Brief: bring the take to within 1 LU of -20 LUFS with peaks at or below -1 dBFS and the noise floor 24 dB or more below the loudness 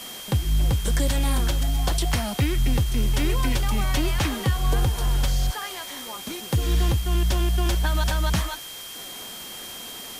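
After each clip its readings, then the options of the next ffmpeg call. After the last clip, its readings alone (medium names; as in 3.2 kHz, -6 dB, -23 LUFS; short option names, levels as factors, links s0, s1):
steady tone 3.2 kHz; tone level -39 dBFS; noise floor -38 dBFS; noise floor target -49 dBFS; loudness -25.0 LUFS; peak level -11.5 dBFS; loudness target -20.0 LUFS
-> -af "bandreject=f=3200:w=30"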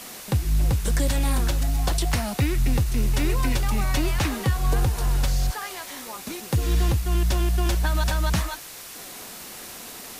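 steady tone not found; noise floor -40 dBFS; noise floor target -49 dBFS
-> -af "afftdn=nr=9:nf=-40"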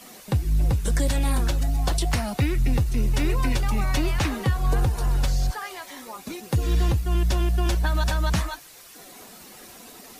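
noise floor -46 dBFS; noise floor target -49 dBFS
-> -af "afftdn=nr=6:nf=-46"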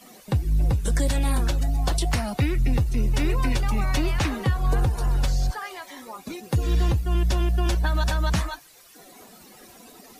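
noise floor -50 dBFS; loudness -24.5 LUFS; peak level -12.0 dBFS; loudness target -20.0 LUFS
-> -af "volume=1.68"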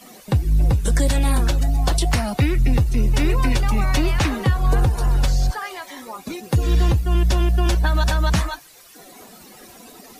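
loudness -20.0 LUFS; peak level -7.5 dBFS; noise floor -45 dBFS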